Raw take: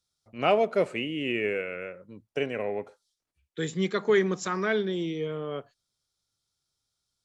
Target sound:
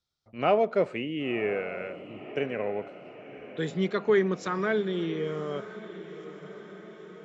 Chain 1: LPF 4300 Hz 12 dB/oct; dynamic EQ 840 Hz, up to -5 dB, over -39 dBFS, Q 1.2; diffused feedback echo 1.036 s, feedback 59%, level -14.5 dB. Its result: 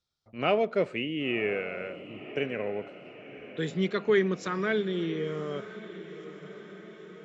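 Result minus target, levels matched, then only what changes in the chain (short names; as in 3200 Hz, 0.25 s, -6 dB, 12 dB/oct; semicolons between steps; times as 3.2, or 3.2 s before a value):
4000 Hz band +4.0 dB
change: dynamic EQ 2900 Hz, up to -5 dB, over -39 dBFS, Q 1.2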